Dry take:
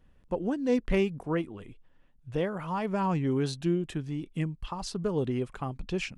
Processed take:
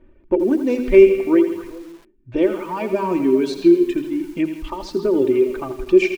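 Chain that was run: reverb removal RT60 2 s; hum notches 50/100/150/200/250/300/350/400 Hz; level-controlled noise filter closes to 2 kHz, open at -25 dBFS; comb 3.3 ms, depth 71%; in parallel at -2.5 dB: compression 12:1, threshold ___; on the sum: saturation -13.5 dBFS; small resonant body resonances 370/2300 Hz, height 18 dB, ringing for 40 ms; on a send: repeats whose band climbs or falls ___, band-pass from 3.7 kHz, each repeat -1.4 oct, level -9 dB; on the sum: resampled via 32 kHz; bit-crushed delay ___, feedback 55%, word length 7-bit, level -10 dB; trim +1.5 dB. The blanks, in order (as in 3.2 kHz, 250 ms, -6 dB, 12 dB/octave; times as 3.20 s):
-39 dBFS, 135 ms, 83 ms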